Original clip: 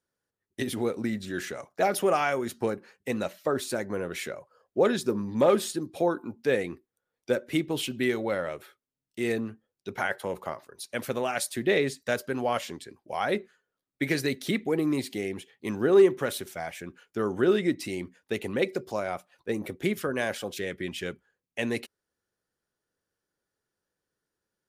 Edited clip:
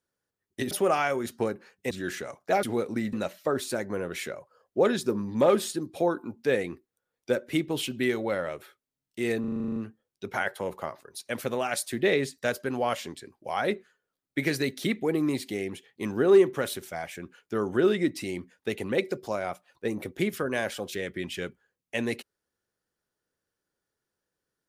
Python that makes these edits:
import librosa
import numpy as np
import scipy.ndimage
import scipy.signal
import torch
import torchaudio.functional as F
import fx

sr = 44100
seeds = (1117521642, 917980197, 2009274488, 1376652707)

y = fx.edit(x, sr, fx.swap(start_s=0.71, length_s=0.5, other_s=1.93, other_length_s=1.2),
    fx.stutter(start_s=9.4, slice_s=0.04, count=10), tone=tone)